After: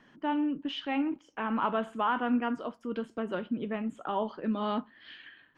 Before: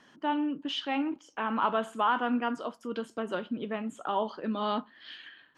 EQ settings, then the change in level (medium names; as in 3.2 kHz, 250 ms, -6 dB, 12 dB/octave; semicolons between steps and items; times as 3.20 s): tilt EQ -2.5 dB/octave; peaking EQ 2.2 kHz +6 dB 1.1 oct; -3.5 dB